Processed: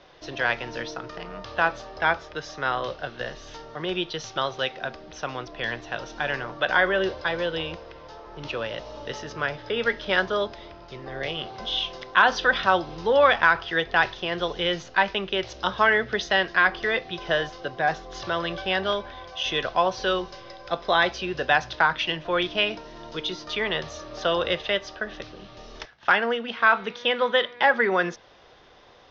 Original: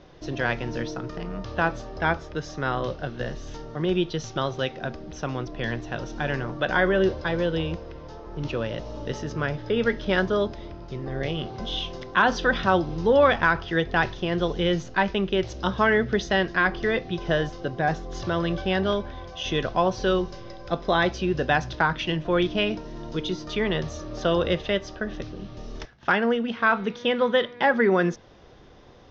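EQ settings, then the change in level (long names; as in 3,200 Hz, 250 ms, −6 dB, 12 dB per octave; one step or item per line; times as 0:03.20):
three-way crossover with the lows and the highs turned down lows −12 dB, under 490 Hz, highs −20 dB, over 5,500 Hz
high-shelf EQ 3,600 Hz +6.5 dB
+2.0 dB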